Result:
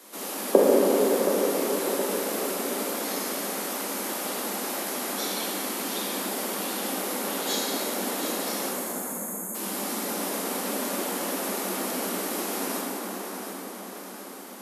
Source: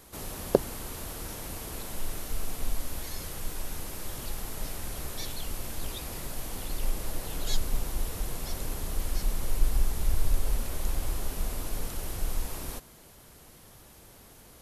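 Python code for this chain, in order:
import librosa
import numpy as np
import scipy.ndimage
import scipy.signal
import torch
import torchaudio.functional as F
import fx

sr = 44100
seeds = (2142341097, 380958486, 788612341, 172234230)

y = fx.echo_feedback(x, sr, ms=721, feedback_pct=47, wet_db=-8.5)
y = fx.spec_erase(y, sr, start_s=8.69, length_s=0.86, low_hz=240.0, high_hz=6300.0)
y = scipy.signal.sosfilt(scipy.signal.butter(16, 190.0, 'highpass', fs=sr, output='sos'), y)
y = fx.spec_gate(y, sr, threshold_db=-30, keep='strong')
y = fx.rev_plate(y, sr, seeds[0], rt60_s=5.0, hf_ratio=0.35, predelay_ms=0, drr_db=-7.0)
y = y * 10.0 ** (3.0 / 20.0)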